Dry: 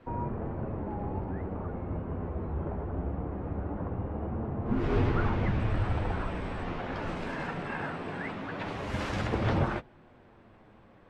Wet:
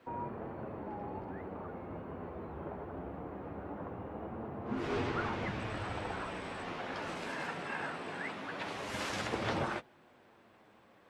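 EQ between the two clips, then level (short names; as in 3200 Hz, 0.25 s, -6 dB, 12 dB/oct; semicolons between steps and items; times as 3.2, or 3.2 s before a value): HPF 330 Hz 6 dB/oct; high shelf 4500 Hz +11.5 dB; -3.0 dB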